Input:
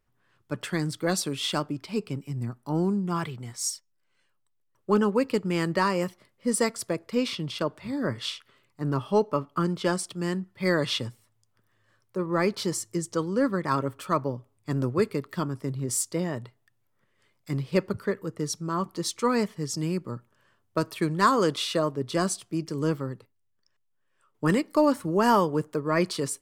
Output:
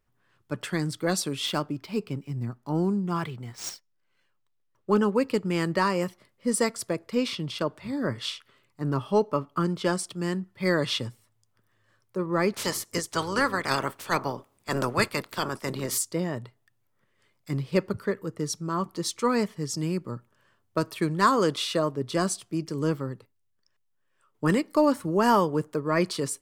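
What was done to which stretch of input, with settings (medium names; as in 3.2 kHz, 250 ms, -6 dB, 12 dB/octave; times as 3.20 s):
1.46–4.96 s: median filter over 5 samples
12.53–15.97 s: spectral peaks clipped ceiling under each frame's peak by 22 dB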